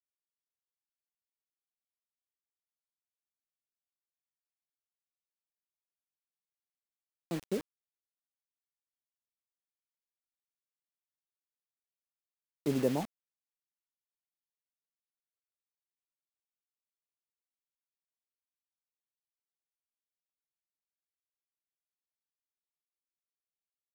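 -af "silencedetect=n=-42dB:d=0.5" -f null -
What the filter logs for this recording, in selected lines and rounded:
silence_start: 0.00
silence_end: 7.31 | silence_duration: 7.31
silence_start: 7.61
silence_end: 12.66 | silence_duration: 5.05
silence_start: 13.05
silence_end: 23.95 | silence_duration: 10.90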